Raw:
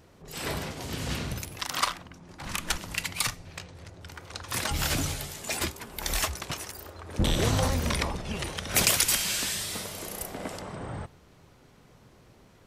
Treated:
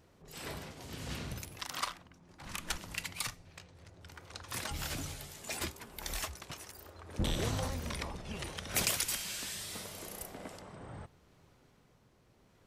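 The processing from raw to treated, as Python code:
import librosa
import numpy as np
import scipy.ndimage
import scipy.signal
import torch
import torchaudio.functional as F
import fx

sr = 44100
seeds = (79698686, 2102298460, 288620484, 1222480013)

y = x * (1.0 - 0.35 / 2.0 + 0.35 / 2.0 * np.cos(2.0 * np.pi * 0.7 * (np.arange(len(x)) / sr)))
y = F.gain(torch.from_numpy(y), -7.5).numpy()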